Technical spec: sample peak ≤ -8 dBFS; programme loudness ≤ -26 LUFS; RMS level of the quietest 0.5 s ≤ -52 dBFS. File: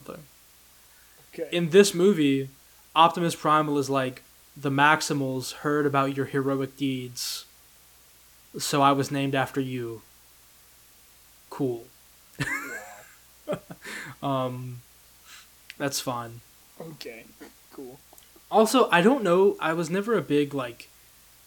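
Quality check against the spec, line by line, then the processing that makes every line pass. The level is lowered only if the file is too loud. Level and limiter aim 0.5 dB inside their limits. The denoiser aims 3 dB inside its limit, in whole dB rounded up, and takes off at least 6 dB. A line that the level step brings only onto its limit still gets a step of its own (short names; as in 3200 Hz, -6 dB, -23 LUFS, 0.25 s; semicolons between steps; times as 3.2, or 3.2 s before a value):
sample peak -5.5 dBFS: fail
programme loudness -24.5 LUFS: fail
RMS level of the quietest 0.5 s -55 dBFS: OK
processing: gain -2 dB; limiter -8.5 dBFS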